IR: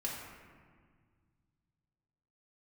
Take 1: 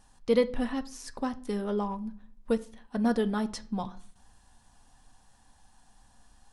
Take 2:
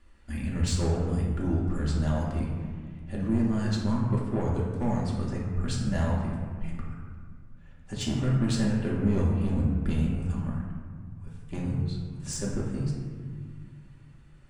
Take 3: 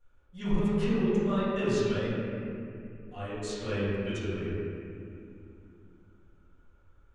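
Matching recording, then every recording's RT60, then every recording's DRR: 2; 0.50, 1.8, 2.7 s; 8.5, -4.5, -15.5 dB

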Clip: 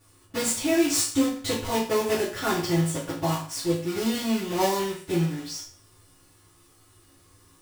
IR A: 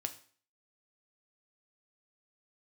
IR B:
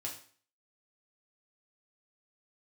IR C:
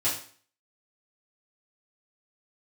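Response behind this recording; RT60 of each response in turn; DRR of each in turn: C; 0.45, 0.45, 0.45 s; 7.0, -2.0, -10.0 dB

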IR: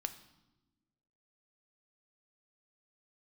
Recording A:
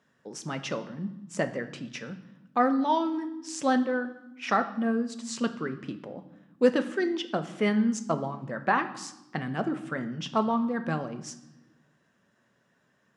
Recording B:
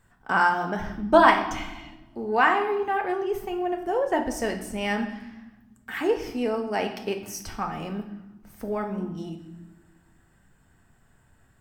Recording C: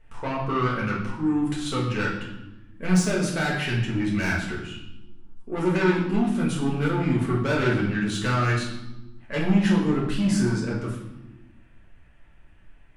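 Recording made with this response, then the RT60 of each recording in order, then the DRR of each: A; 1.1, 1.1, 1.1 s; 8.0, 3.5, -5.5 dB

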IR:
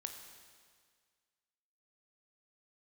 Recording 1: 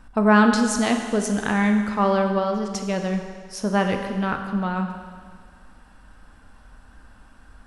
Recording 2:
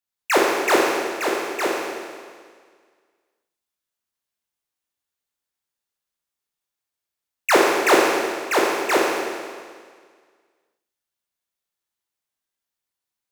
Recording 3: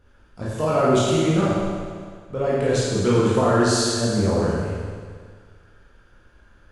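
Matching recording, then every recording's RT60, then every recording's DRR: 1; 1.8, 1.8, 1.8 s; 4.5, -4.0, -8.0 dB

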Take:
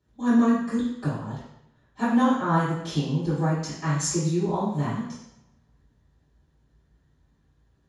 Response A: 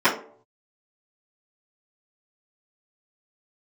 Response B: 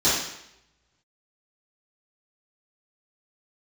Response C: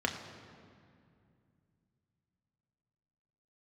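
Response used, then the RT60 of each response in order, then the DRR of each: B; not exponential, 0.80 s, 2.4 s; -14.5, -14.0, 2.0 dB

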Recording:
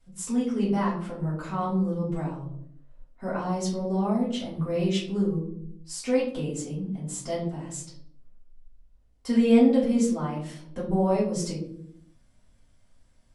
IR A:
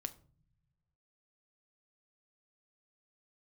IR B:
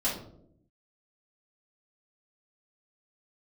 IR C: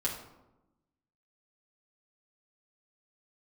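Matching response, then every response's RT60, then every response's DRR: B; not exponential, 0.70 s, 1.0 s; 9.5, -9.0, -5.0 dB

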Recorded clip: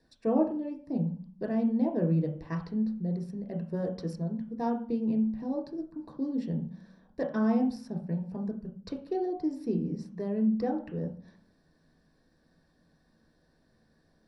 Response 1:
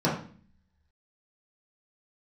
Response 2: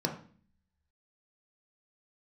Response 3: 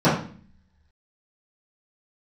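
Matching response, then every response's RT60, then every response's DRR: 2; 0.45, 0.45, 0.45 s; -7.5, 1.5, -14.5 dB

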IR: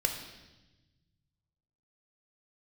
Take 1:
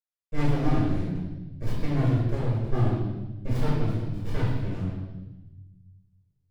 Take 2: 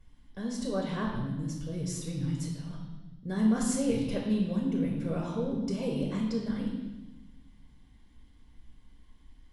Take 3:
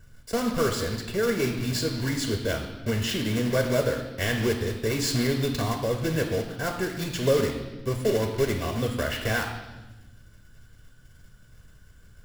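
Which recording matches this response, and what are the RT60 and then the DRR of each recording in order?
3; 1.1, 1.1, 1.1 s; -9.0, -1.5, 3.5 dB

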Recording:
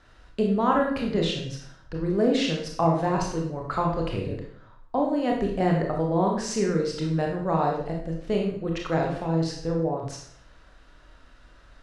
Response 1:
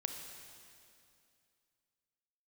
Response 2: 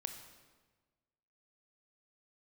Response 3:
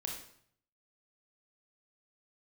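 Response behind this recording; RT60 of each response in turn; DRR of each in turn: 3; 2.5, 1.4, 0.60 s; 4.5, 6.5, 0.0 dB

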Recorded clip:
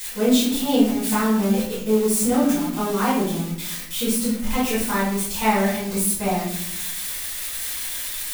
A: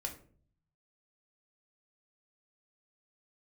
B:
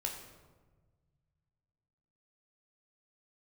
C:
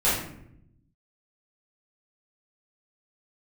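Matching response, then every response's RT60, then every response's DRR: C; 0.50, 1.4, 0.75 s; 2.0, 0.5, -12.0 dB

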